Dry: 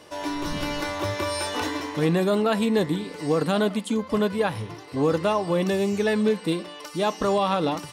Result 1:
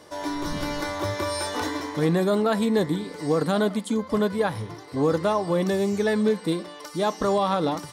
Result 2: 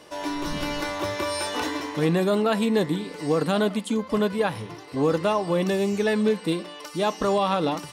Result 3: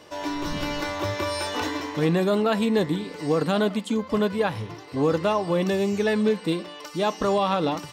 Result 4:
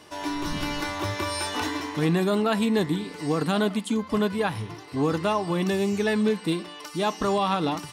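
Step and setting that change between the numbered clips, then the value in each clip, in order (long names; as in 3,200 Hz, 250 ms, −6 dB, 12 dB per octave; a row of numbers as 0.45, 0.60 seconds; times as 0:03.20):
parametric band, centre frequency: 2,700, 96, 10,000, 530 Hertz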